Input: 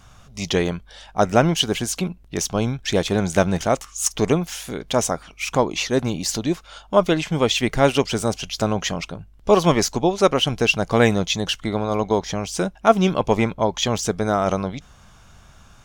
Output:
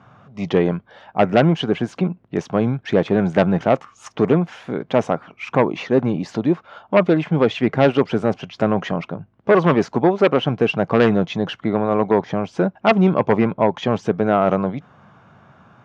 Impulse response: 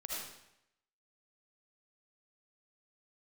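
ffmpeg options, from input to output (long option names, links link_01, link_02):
-af "lowpass=1500,aeval=exprs='0.794*sin(PI/2*2.24*val(0)/0.794)':channel_layout=same,highpass=frequency=120:width=0.5412,highpass=frequency=120:width=1.3066,volume=-5.5dB"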